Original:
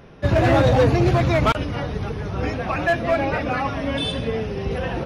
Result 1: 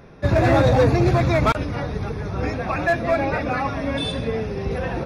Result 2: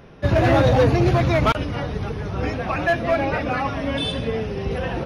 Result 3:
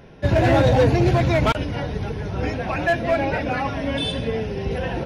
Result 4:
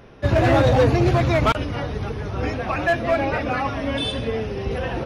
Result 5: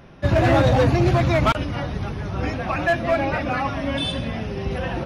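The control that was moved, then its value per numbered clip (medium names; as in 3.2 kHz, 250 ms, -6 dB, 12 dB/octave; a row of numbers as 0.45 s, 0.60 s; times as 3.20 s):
band-stop, frequency: 3 kHz, 7.7 kHz, 1.2 kHz, 170 Hz, 450 Hz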